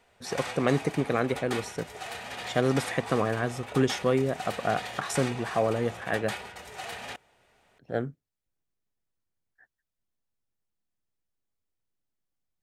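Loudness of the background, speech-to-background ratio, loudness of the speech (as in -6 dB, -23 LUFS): -38.5 LUFS, 9.5 dB, -29.0 LUFS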